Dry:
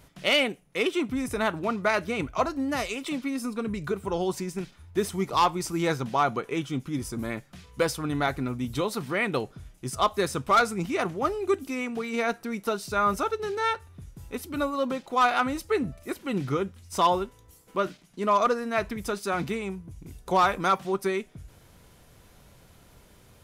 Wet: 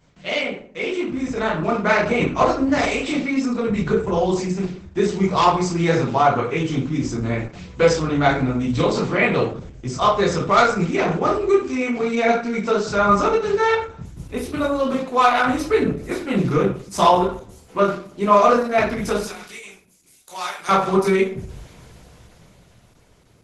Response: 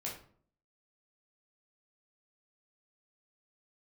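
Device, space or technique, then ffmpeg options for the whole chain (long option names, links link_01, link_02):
speakerphone in a meeting room: -filter_complex "[0:a]asettb=1/sr,asplit=3[link_01][link_02][link_03];[link_01]atrim=end=19.244[link_04];[link_02]atrim=start=19.24:end=20.69,asetpts=PTS-STARTPTS,afade=type=in:duration=0.004:curve=qsin,afade=type=out:start_time=1.446:duration=0.004:curve=qsin,aderivative[link_05];[link_03]atrim=start=20.686[link_06];[link_04][link_05]acrossfade=duration=0.004:curve1=hsin:curve2=qsin[link_07];[link_07][link_06]acrossfade=duration=0.004:curve1=qsin:curve2=hsin[link_08];[1:a]atrim=start_sample=2205[link_09];[link_08][link_09]afir=irnorm=-1:irlink=0,dynaudnorm=framelen=170:gausssize=17:maxgain=12.5dB" -ar 48000 -c:a libopus -b:a 12k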